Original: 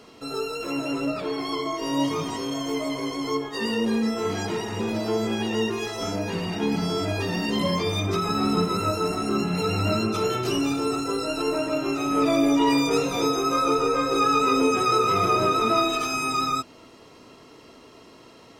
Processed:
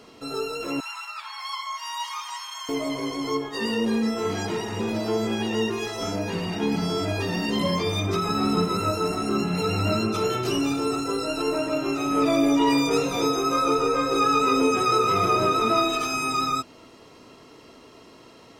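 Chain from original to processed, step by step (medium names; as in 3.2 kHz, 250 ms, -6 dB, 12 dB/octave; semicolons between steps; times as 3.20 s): 0.80–2.69 s: steep high-pass 840 Hz 72 dB/octave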